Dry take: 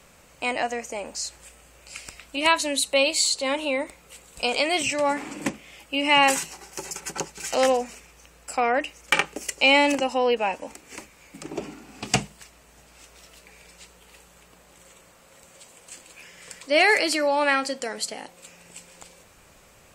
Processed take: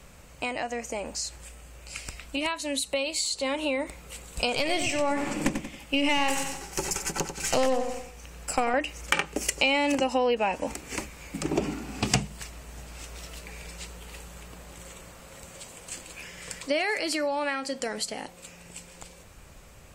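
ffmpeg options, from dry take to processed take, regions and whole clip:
ffmpeg -i in.wav -filter_complex "[0:a]asettb=1/sr,asplit=3[link_01][link_02][link_03];[link_01]atrim=end=4.564[link_04];[link_02]atrim=start=4.56:end=8.74,asetpts=PTS-STARTPTS,afade=type=in:duration=0.004:curve=qsin,afade=type=out:start_time=4.176:duration=0.004:curve=qsin,tremolo=f=1.3:d=0.42,aeval=exprs='(tanh(5.62*val(0)+0.4)-tanh(0.4))/5.62':channel_layout=same,aecho=1:1:92|184|276|368:0.335|0.121|0.0434|0.0156,atrim=end_sample=184338[link_05];[link_03]atrim=start=8.736[link_06];[link_04][link_05]acrossfade=duration=0.004:curve1=hsin:curve2=qsin[link_07];[link_07][link_06]acrossfade=duration=0.004:curve1=qsin:curve2=hsin,acompressor=threshold=-28dB:ratio=6,lowshelf=frequency=140:gain=11.5,dynaudnorm=framelen=530:gausssize=17:maxgain=9dB" out.wav

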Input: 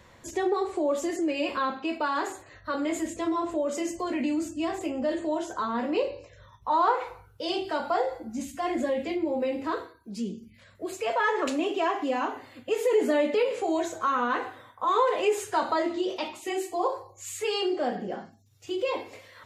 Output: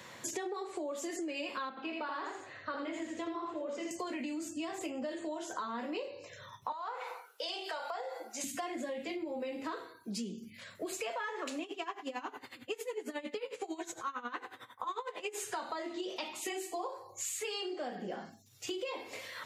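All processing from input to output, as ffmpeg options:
ffmpeg -i in.wav -filter_complex "[0:a]asettb=1/sr,asplit=3[link_01][link_02][link_03];[link_01]atrim=end=1.694[link_04];[link_02]atrim=start=1.69:end=3.91,asetpts=PTS-STARTPTS,afade=type=in:duration=0.004:curve=qsin,afade=type=out:start_time=2.216:duration=0.004:curve=qsin,lowpass=3800,flanger=delay=0.6:depth=8.1:regen=-73:speed=1.6:shape=sinusoidal,aecho=1:1:81:0.708,atrim=end_sample=97902[link_05];[link_03]atrim=start=3.906[link_06];[link_04][link_05]acrossfade=duration=0.004:curve1=hsin:curve2=qsin[link_07];[link_07][link_06]acrossfade=duration=0.004:curve1=qsin:curve2=hsin,asettb=1/sr,asplit=3[link_08][link_09][link_10];[link_08]atrim=end=6.724[link_11];[link_09]atrim=start=6.72:end=8.44,asetpts=PTS-STARTPTS,afade=type=in:duration=0.004:curve=qsin,afade=type=out:start_time=1.716:duration=0.004:curve=qsin,highpass=frequency=460:width=0.5412,highpass=frequency=460:width=1.3066,acompressor=threshold=-38dB:ratio=2:attack=3.2:release=140:knee=1:detection=peak[link_12];[link_10]atrim=start=8.436[link_13];[link_11][link_12]acrossfade=duration=0.004:curve1=hsin:curve2=qsin[link_14];[link_14][link_13]acrossfade=duration=0.004:curve1=qsin:curve2=hsin,asettb=1/sr,asplit=3[link_15][link_16][link_17];[link_15]atrim=end=11.634[link_18];[link_16]atrim=start=11.63:end=15.36,asetpts=PTS-STARTPTS,afade=type=in:duration=0.004:curve=qsin,afade=type=out:start_time=3.726:duration=0.004:curve=qsin,equalizer=frequency=630:width_type=o:width=0.23:gain=-8.5,aeval=exprs='val(0)*pow(10,-18*(0.5-0.5*cos(2*PI*11*n/s))/20)':channel_layout=same[link_19];[link_17]atrim=start=15.356[link_20];[link_18][link_19]acrossfade=duration=0.004:curve1=hsin:curve2=qsin[link_21];[link_21][link_20]acrossfade=duration=0.004:curve1=qsin:curve2=hsin,highpass=frequency=120:width=0.5412,highpass=frequency=120:width=1.3066,tiltshelf=frequency=1400:gain=-3.5,acompressor=threshold=-41dB:ratio=10,volume=5dB" out.wav

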